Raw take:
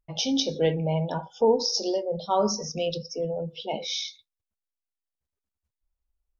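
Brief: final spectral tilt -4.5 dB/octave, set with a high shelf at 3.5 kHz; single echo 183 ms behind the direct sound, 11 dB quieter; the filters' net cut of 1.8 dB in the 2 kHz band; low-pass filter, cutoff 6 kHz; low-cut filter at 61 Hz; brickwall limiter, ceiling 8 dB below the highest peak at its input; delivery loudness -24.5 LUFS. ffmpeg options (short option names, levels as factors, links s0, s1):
-af "highpass=61,lowpass=6000,equalizer=f=2000:t=o:g=-4,highshelf=f=3500:g=5,alimiter=limit=0.133:level=0:latency=1,aecho=1:1:183:0.282,volume=1.58"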